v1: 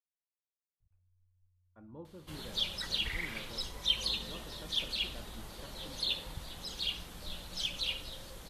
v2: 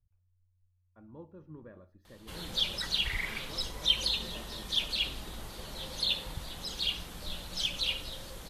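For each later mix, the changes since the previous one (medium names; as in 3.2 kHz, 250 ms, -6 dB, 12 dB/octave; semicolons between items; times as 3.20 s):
speech: entry -0.80 s; background +3.5 dB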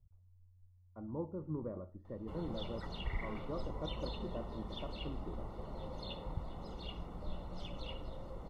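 speech +8.5 dB; master: add Savitzky-Golay filter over 65 samples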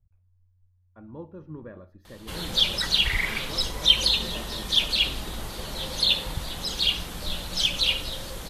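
background +8.5 dB; master: remove Savitzky-Golay filter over 65 samples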